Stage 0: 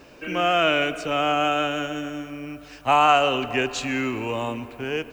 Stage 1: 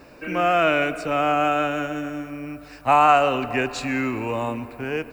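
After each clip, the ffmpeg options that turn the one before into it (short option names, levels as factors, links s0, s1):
-af "equalizer=f=400:t=o:w=0.33:g=-3,equalizer=f=3150:t=o:w=0.33:g=-12,equalizer=f=6300:t=o:w=0.33:g=-8,volume=1.26"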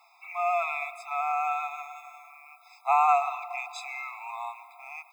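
-af "afftfilt=real='re*eq(mod(floor(b*sr/1024/670),2),1)':imag='im*eq(mod(floor(b*sr/1024/670),2),1)':win_size=1024:overlap=0.75,volume=0.531"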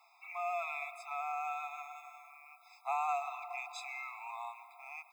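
-filter_complex "[0:a]acrossover=split=500|3000[s0][s1][s2];[s1]acompressor=threshold=0.0158:ratio=2[s3];[s0][s3][s2]amix=inputs=3:normalize=0,volume=0.531"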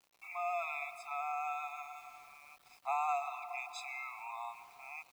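-af "aeval=exprs='val(0)*gte(abs(val(0)),0.00119)':c=same"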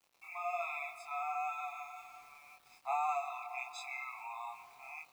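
-af "flanger=delay=22.5:depth=2.4:speed=1.3,volume=1.33"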